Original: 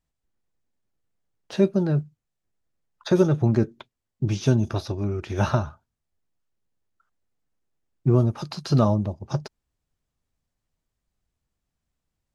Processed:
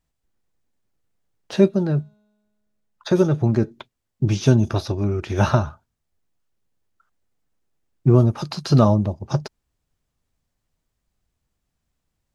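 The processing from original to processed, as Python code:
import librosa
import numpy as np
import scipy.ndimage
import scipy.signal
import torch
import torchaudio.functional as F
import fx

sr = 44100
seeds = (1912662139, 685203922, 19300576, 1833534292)

y = fx.comb_fb(x, sr, f0_hz=210.0, decay_s=1.6, harmonics='all', damping=0.0, mix_pct=30, at=(1.68, 3.69), fade=0.02)
y = y * librosa.db_to_amplitude(4.5)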